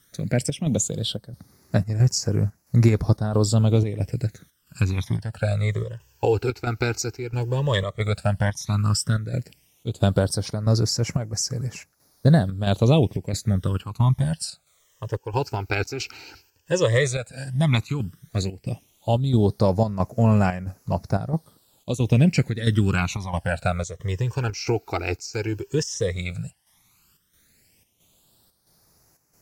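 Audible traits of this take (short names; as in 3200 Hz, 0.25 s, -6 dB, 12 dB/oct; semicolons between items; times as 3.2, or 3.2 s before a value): a quantiser's noise floor 10-bit, dither triangular; chopped level 1.5 Hz, depth 60%, duty 75%; phasing stages 12, 0.11 Hz, lowest notch 180–3400 Hz; Vorbis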